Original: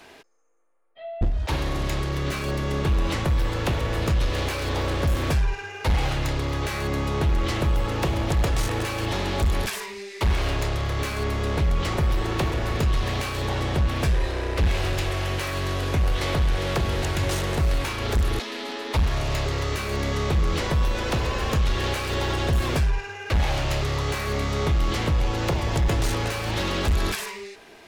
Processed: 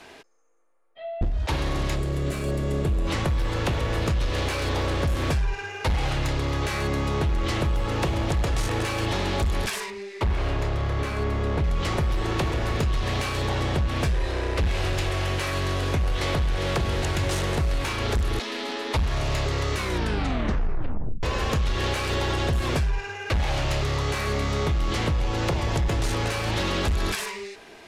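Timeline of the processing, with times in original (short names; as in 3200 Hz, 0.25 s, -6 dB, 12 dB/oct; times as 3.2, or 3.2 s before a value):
1.96–3.07 spectral gain 740–6700 Hz -7 dB
9.9–11.64 high shelf 2800 Hz -10 dB
19.75 tape stop 1.48 s
whole clip: LPF 12000 Hz 12 dB/oct; compressor, threshold -22 dBFS; gain +1.5 dB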